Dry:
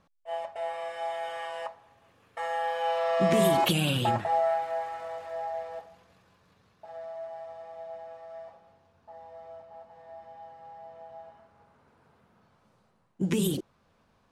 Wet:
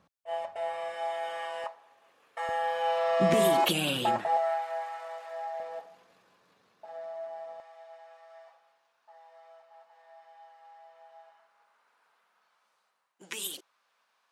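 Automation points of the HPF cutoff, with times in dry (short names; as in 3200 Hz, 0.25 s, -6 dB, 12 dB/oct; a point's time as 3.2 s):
75 Hz
from 0.94 s 190 Hz
from 1.64 s 440 Hz
from 2.49 s 100 Hz
from 3.34 s 250 Hz
from 4.37 s 700 Hz
from 5.6 s 270 Hz
from 7.6 s 1100 Hz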